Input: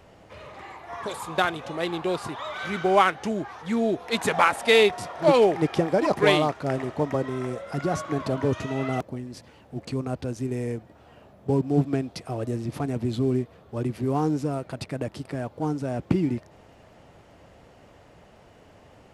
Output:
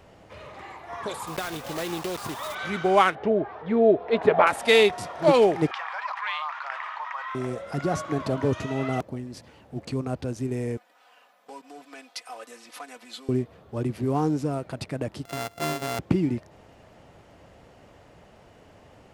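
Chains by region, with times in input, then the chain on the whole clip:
0:01.27–0:02.57: one scale factor per block 3 bits + downward compressor 12 to 1, threshold −25 dBFS
0:03.15–0:04.47: high-frequency loss of the air 360 metres + hollow resonant body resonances 430/620 Hz, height 11 dB, ringing for 35 ms
0:05.71–0:07.35: elliptic high-pass filter 1,000 Hz, stop band 70 dB + head-to-tape spacing loss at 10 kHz 35 dB + envelope flattener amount 70%
0:10.77–0:13.29: comb filter 4 ms, depth 82% + downward compressor 4 to 1, threshold −22 dBFS + high-pass filter 1,100 Hz
0:15.25–0:15.99: samples sorted by size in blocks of 64 samples + high-pass filter 57 Hz + low-shelf EQ 250 Hz −6 dB
whole clip: no processing

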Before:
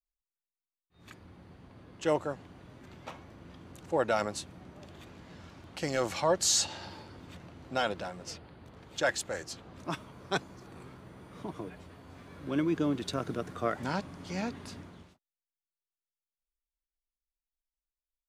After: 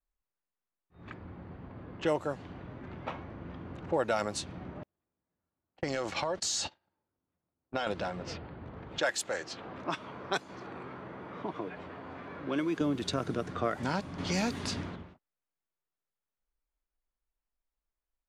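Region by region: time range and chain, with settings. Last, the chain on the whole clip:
0:04.83–0:07.87: noise gate −39 dBFS, range −43 dB + parametric band 110 Hz −4 dB 2 octaves + downward compressor 16 to 1, threshold −30 dBFS
0:08.98–0:12.81: high-pass filter 390 Hz 6 dB per octave + upward compression, threshold −43 dBFS
0:14.18–0:14.96: high-shelf EQ 3,900 Hz +9.5 dB + leveller curve on the samples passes 1
whole clip: low-pass that shuts in the quiet parts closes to 1,600 Hz, open at −28 dBFS; downward compressor 2 to 1, threshold −39 dBFS; level +7 dB

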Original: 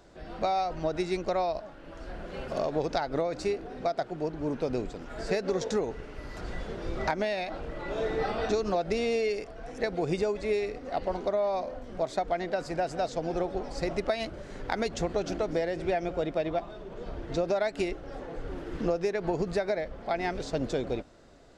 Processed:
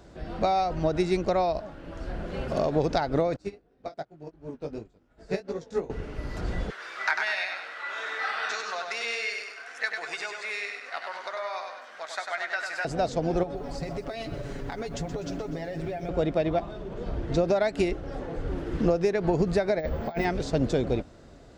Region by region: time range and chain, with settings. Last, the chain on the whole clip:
0:03.36–0:05.90: chorus effect 2.7 Hz, delay 18 ms, depth 3.3 ms + expander for the loud parts 2.5 to 1, over −44 dBFS
0:06.70–0:12.85: high-pass with resonance 1,500 Hz, resonance Q 2.3 + double-tracking delay 13 ms −11 dB + repeating echo 98 ms, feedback 48%, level −5 dB
0:13.43–0:16.09: comb filter 7.1 ms, depth 69% + downward compressor, threshold −35 dBFS + feedback echo at a low word length 124 ms, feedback 55%, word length 10 bits, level −12.5 dB
0:19.79–0:20.25: double-tracking delay 13 ms −2 dB + compressor whose output falls as the input rises −32 dBFS, ratio −0.5 + bad sample-rate conversion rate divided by 2×, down none, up hold
whole clip: high-pass filter 67 Hz 6 dB per octave; low-shelf EQ 190 Hz +11 dB; level +2.5 dB

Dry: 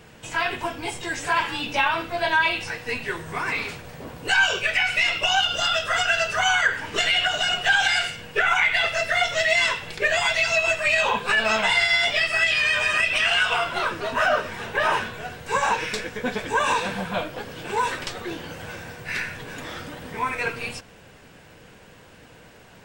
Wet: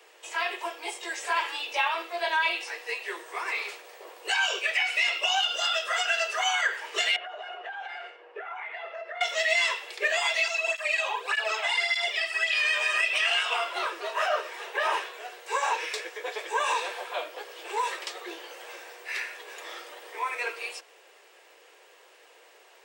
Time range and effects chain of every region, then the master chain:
0:07.16–0:09.21: low-pass filter 1,200 Hz + downward compressor 4 to 1, threshold −29 dBFS
0:10.48–0:12.53: flutter between parallel walls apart 7.5 metres, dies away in 0.21 s + through-zero flanger with one copy inverted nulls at 1.7 Hz, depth 2.3 ms
whole clip: Butterworth high-pass 340 Hz 96 dB per octave; low-shelf EQ 490 Hz −5.5 dB; notch filter 1,500 Hz, Q 9.6; level −3.5 dB

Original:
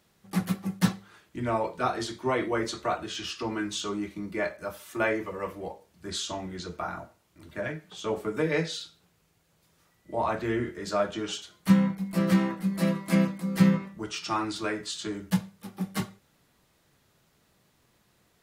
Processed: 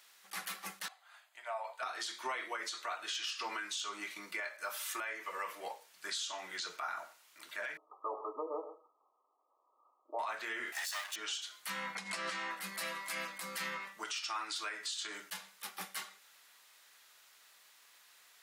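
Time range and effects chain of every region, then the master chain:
0:00.88–0:01.83: notch filter 5,600 Hz, Q 5 + downward compressor 2.5 to 1, threshold −30 dBFS + four-pole ladder high-pass 630 Hz, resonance 70%
0:07.77–0:10.19: linear-phase brick-wall band-pass 240–1,300 Hz + single-tap delay 126 ms −14.5 dB
0:10.72–0:11.16: lower of the sound and its delayed copy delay 1.1 ms + high-pass filter 160 Hz + spectral tilt +4 dB per octave
0:11.95–0:12.51: low-pass filter 8,300 Hz 24 dB per octave + background raised ahead of every attack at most 65 dB per second
whole clip: high-pass filter 1,300 Hz 12 dB per octave; downward compressor 10 to 1, threshold −42 dBFS; brickwall limiter −36.5 dBFS; level +8 dB

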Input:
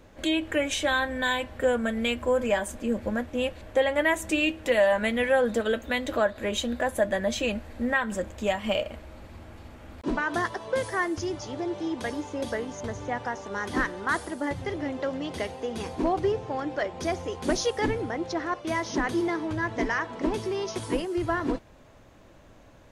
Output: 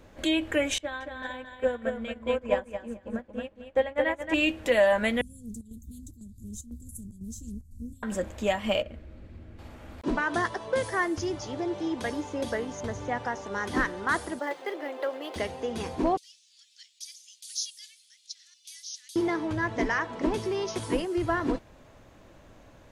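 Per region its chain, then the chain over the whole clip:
0:00.78–0:04.34: low-pass filter 2,400 Hz 6 dB per octave + repeating echo 224 ms, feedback 33%, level −3 dB + expander for the loud parts 2.5 to 1, over −33 dBFS
0:05.21–0:08.03: inverse Chebyshev band-stop filter 720–2,000 Hz, stop band 80 dB + square-wave tremolo 2 Hz, depth 60%, duty 80% + highs frequency-modulated by the lows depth 0.24 ms
0:08.82–0:09.59: low-pass filter 1,300 Hz 6 dB per octave + parametric band 900 Hz −12.5 dB 1.3 octaves
0:10.16–0:10.93: log-companded quantiser 8 bits + linear-phase brick-wall low-pass 11,000 Hz + one half of a high-frequency compander decoder only
0:14.39–0:15.36: high-pass filter 370 Hz 24 dB per octave + notch filter 5,600 Hz + linearly interpolated sample-rate reduction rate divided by 3×
0:16.17–0:19.16: inverse Chebyshev high-pass filter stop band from 900 Hz, stop band 70 dB + high-shelf EQ 11,000 Hz +5.5 dB
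whole clip: no processing

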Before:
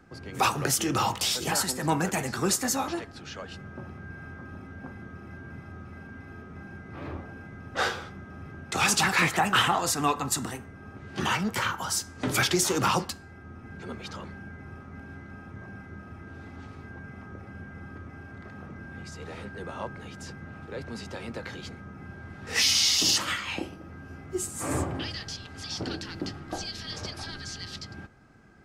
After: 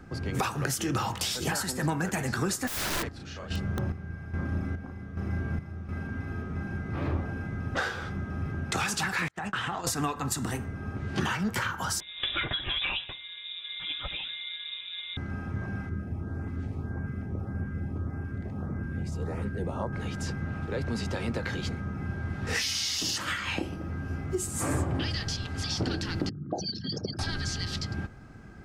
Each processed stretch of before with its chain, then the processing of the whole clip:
0:02.67–0:05.89: double-tracking delay 36 ms −3 dB + square-wave tremolo 1.2 Hz, depth 65% + wrap-around overflow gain 28.5 dB
0:09.28–0:09.87: noise gate −29 dBFS, range −36 dB + low-pass filter 7,500 Hz + downward compressor 2.5 to 1, threshold −37 dBFS
0:12.00–0:15.17: voice inversion scrambler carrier 3,700 Hz + notch comb filter 220 Hz
0:15.89–0:19.93: parametric band 4,000 Hz −9.5 dB 2.4 octaves + auto-filter notch saw up 1.7 Hz 590–4,500 Hz
0:26.29–0:27.19: spectral envelope exaggerated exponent 3 + high-pass filter 140 Hz 24 dB per octave
whole clip: dynamic equaliser 1,600 Hz, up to +6 dB, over −44 dBFS, Q 3.5; downward compressor 6 to 1, threshold −33 dBFS; low-shelf EQ 180 Hz +8.5 dB; level +4.5 dB

